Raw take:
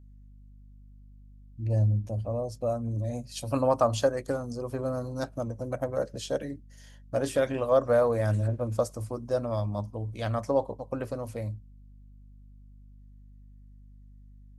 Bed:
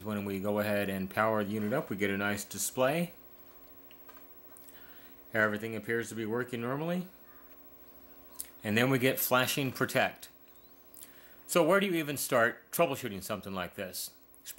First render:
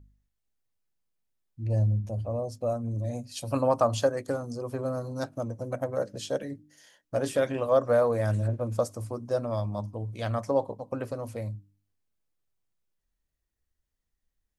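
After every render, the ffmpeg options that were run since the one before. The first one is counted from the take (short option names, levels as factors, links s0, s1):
-af "bandreject=f=50:t=h:w=4,bandreject=f=100:t=h:w=4,bandreject=f=150:t=h:w=4,bandreject=f=200:t=h:w=4,bandreject=f=250:t=h:w=4,bandreject=f=300:t=h:w=4"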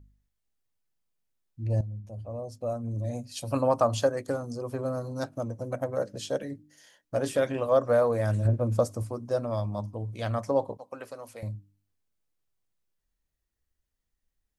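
-filter_complex "[0:a]asettb=1/sr,asplit=3[s0][s1][s2];[s0]atrim=end=8.454[s3];[s1]atrim=start=8.45:end=9.03,asetpts=PTS-STARTPTS,afade=t=in:d=0.004:c=qsin,afade=t=out:st=0.576:d=0.004:c=qsin,lowshelf=f=440:g=5.5[s4];[s2]atrim=start=9.026[s5];[s3][s4]acrossfade=d=0.004:c1=hsin:c2=qsin[s6];[s6][s5]acrossfade=d=0.004:c1=qsin:c2=hsin,asettb=1/sr,asplit=3[s7][s8][s9];[s7]atrim=end=10.774[s10];[s8]atrim=start=10.77:end=11.43,asetpts=PTS-STARTPTS,afade=t=in:d=0.004:c=qsin,afade=t=out:st=0.656:d=0.004:c=qsin,highpass=f=990:p=1[s11];[s9]atrim=start=11.426[s12];[s10][s11]acrossfade=d=0.004:c1=hsin:c2=qsin[s13];[s13][s12]acrossfade=d=0.004:c1=qsin:c2=hsin,asplit=2[s14][s15];[s14]atrim=end=1.81,asetpts=PTS-STARTPTS,afade=t=out:st=1.806:d=0.004:c=hsin:silence=0.188365[s16];[s15]atrim=start=1.81,asetpts=PTS-STARTPTS,afade=t=in:d=1.29:silence=0.188365[s17];[s16][s17]concat=n=2:v=0:a=1"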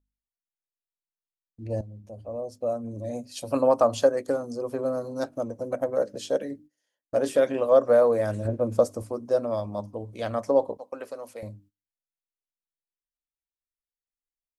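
-af "agate=range=0.0708:threshold=0.00316:ratio=16:detection=peak,equalizer=f=125:t=o:w=1:g=-9,equalizer=f=250:t=o:w=1:g=3,equalizer=f=500:t=o:w=1:g=5"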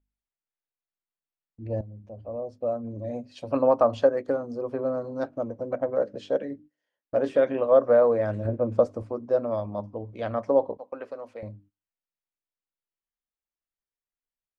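-af "lowpass=2600"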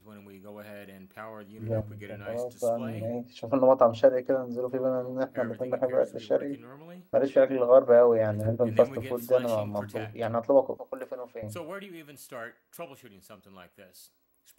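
-filter_complex "[1:a]volume=0.211[s0];[0:a][s0]amix=inputs=2:normalize=0"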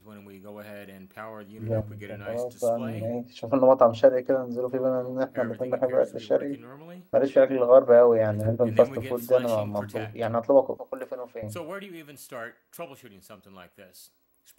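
-af "volume=1.33"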